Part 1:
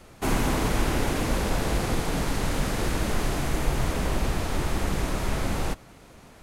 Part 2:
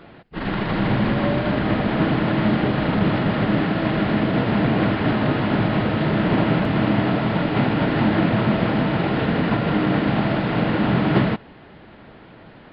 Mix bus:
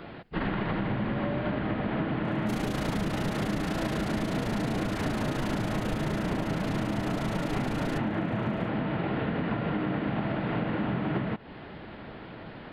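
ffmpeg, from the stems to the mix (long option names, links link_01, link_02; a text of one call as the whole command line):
ffmpeg -i stem1.wav -i stem2.wav -filter_complex "[0:a]equalizer=frequency=3700:width=1:gain=9,tremolo=f=28:d=0.889,adelay=2250,volume=1.5dB[link_01];[1:a]acrossover=split=3400[link_02][link_03];[link_03]acompressor=threshold=-56dB:ratio=4:attack=1:release=60[link_04];[link_02][link_04]amix=inputs=2:normalize=0,volume=1.5dB[link_05];[link_01][link_05]amix=inputs=2:normalize=0,acompressor=threshold=-26dB:ratio=12" out.wav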